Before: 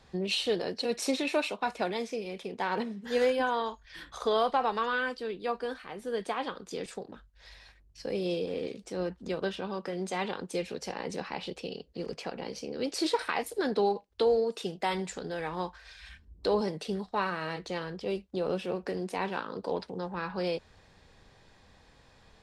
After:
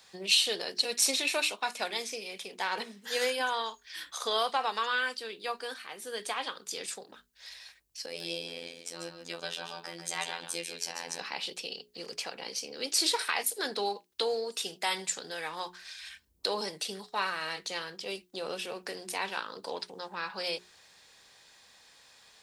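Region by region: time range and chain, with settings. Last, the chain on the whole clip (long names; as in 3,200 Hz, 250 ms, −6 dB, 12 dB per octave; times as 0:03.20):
0:08.06–0:11.19: phases set to zero 84.6 Hz + single-tap delay 143 ms −7.5 dB
whole clip: spectral tilt +4.5 dB per octave; mains-hum notches 60/120/180/240/300/360/420 Hz; level −1.5 dB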